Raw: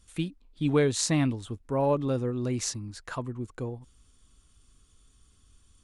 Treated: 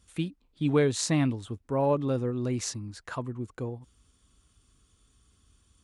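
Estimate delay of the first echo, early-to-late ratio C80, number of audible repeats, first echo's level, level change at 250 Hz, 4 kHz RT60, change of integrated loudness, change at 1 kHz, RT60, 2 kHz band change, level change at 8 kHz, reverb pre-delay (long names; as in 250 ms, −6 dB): no echo audible, no reverb audible, no echo audible, no echo audible, 0.0 dB, no reverb audible, −0.5 dB, 0.0 dB, no reverb audible, −0.5 dB, −2.5 dB, no reverb audible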